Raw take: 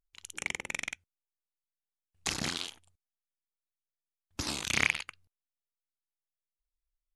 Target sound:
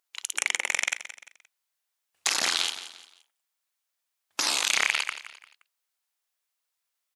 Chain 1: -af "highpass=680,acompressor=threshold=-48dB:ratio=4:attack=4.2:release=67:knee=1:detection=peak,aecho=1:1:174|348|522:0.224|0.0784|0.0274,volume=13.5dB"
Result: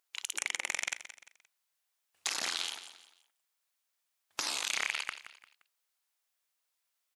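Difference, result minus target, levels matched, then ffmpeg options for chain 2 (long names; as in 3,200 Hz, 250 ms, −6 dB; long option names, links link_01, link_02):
downward compressor: peak gain reduction +9 dB
-af "highpass=680,acompressor=threshold=-36dB:ratio=4:attack=4.2:release=67:knee=1:detection=peak,aecho=1:1:174|348|522:0.224|0.0784|0.0274,volume=13.5dB"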